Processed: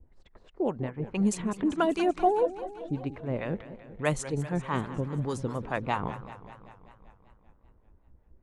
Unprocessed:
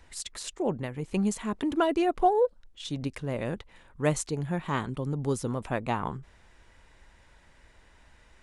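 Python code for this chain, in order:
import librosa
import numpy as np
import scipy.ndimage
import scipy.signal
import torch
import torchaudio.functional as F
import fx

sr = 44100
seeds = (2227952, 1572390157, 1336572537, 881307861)

y = fx.env_lowpass(x, sr, base_hz=330.0, full_db=-22.5)
y = fx.harmonic_tremolo(y, sr, hz=4.8, depth_pct=70, crossover_hz=640.0)
y = fx.echo_warbled(y, sr, ms=194, feedback_pct=65, rate_hz=2.8, cents=189, wet_db=-14)
y = y * 10.0 ** (3.0 / 20.0)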